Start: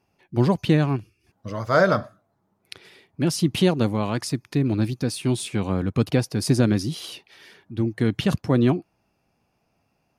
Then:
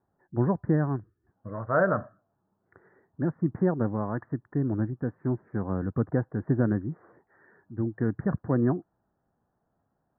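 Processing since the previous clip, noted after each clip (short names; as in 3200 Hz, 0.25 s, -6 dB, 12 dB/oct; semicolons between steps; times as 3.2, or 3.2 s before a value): steep low-pass 1800 Hz 96 dB/oct; gain -5.5 dB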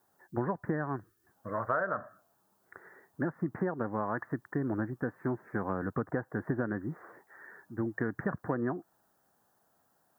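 tilt +4 dB/oct; compressor 10:1, threshold -34 dBFS, peak gain reduction 15 dB; gain +6.5 dB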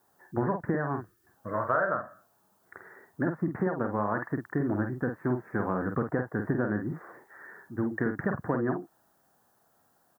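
doubler 48 ms -6 dB; gain +3 dB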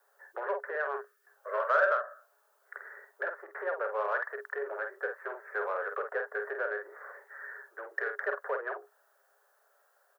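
in parallel at -3.5 dB: soft clip -28 dBFS, distortion -9 dB; on the sum: rippled Chebyshev high-pass 400 Hz, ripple 9 dB; gain +1 dB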